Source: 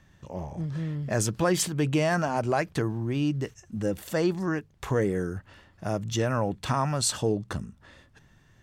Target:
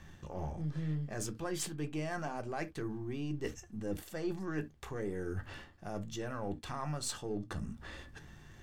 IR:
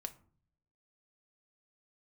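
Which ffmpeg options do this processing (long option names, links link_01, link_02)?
-filter_complex "[0:a]aeval=exprs='if(lt(val(0),0),0.708*val(0),val(0))':channel_layout=same,areverse,acompressor=threshold=-42dB:ratio=8,areverse[link_01];[1:a]atrim=start_sample=2205,atrim=end_sample=6174,asetrate=79380,aresample=44100[link_02];[link_01][link_02]afir=irnorm=-1:irlink=0,volume=14dB"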